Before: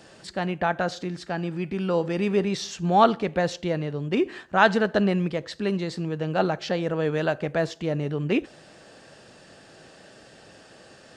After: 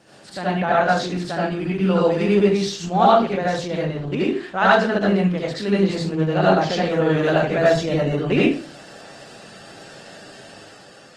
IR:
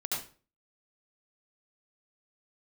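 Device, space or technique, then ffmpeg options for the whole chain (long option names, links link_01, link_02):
far-field microphone of a smart speaker: -filter_complex "[1:a]atrim=start_sample=2205[link_01];[0:a][link_01]afir=irnorm=-1:irlink=0,highpass=frequency=90:poles=1,dynaudnorm=framelen=120:gausssize=11:maxgain=5dB" -ar 48000 -c:a libopus -b:a 20k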